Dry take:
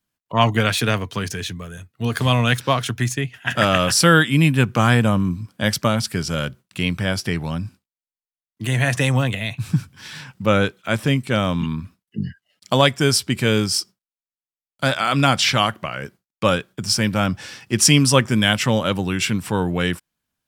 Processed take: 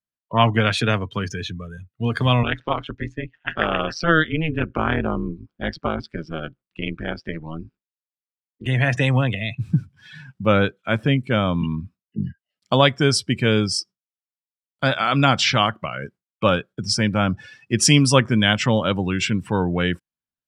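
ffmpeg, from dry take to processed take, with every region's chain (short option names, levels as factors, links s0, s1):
-filter_complex "[0:a]asettb=1/sr,asplit=3[s0][s1][s2];[s0]atrim=end=2.434[s3];[s1]atrim=start=2.43:end=8.66,asetpts=PTS-STARTPTS,afade=t=in:d=0.004:c=qsin,afade=t=out:st=6.226:d=0.004:c=qsin,highpass=150,lowpass=3800,tremolo=f=160:d=0.974[s4];[s2]atrim=start=8.656[s5];[s3][s4]acrossfade=d=0.004:c1=hsin:c2=qsin[s6];[s6][s5]acrossfade=d=0.004:c1=qsin:c2=hsin,highshelf=f=10000:g=-10.5,afftdn=nr=17:nf=-33"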